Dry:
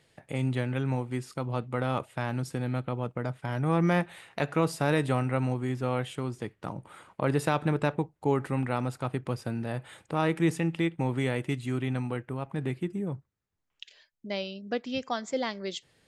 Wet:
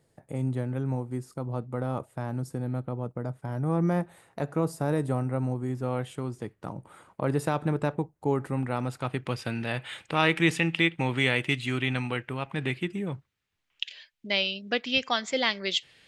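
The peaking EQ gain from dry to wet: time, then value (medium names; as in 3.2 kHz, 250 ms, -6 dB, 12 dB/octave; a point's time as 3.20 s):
peaking EQ 2.8 kHz 1.9 oct
5.50 s -14 dB
6.03 s -5.5 dB
8.60 s -5.5 dB
8.93 s +2.5 dB
9.50 s +13.5 dB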